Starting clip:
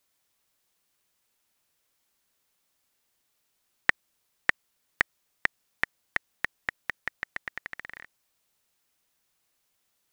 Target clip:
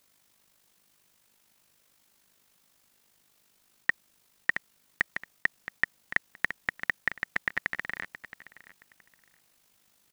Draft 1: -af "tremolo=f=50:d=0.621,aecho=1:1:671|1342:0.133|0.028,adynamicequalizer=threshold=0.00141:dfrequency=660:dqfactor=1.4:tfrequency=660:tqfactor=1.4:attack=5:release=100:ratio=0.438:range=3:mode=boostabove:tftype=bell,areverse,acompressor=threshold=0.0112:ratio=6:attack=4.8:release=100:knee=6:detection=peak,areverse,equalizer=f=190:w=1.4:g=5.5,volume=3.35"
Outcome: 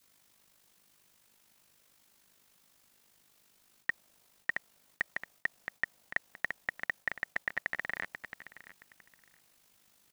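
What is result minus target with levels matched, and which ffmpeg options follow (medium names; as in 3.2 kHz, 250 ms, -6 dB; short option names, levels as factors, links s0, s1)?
compression: peak gain reduction +7.5 dB; 500 Hz band +3.5 dB
-af "tremolo=f=50:d=0.621,aecho=1:1:671|1342:0.133|0.028,areverse,acompressor=threshold=0.0316:ratio=6:attack=4.8:release=100:knee=6:detection=peak,areverse,equalizer=f=190:w=1.4:g=5.5,volume=3.35"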